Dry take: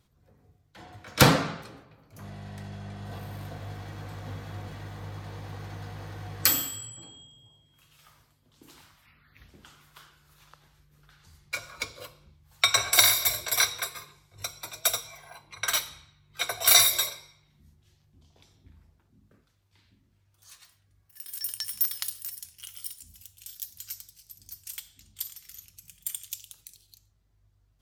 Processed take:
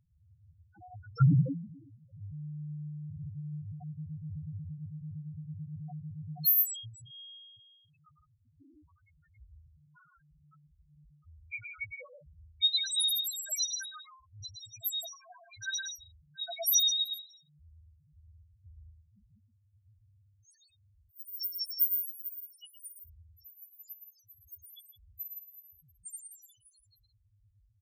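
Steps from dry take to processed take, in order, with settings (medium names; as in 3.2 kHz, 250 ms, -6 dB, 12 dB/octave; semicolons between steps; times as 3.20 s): loudspeakers at several distances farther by 39 m -6 dB, 57 m -10 dB; loudest bins only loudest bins 1; trim +7 dB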